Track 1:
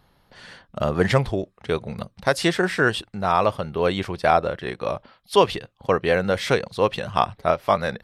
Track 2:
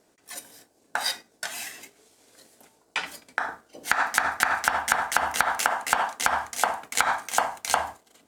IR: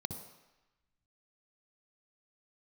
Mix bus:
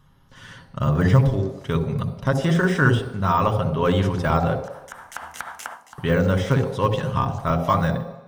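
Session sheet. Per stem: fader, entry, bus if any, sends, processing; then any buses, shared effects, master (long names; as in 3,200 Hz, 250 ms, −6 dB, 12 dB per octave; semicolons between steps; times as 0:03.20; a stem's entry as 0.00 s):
0.0 dB, 0.00 s, muted 0:04.55–0:05.98, send −5 dB, de-essing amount 85%; comb filter 7.4 ms, depth 46%; automatic gain control gain up to 3 dB
−9.5 dB, 0.00 s, send −12.5 dB, automatic ducking −16 dB, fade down 0.25 s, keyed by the first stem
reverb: on, RT60 1.0 s, pre-delay 58 ms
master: no processing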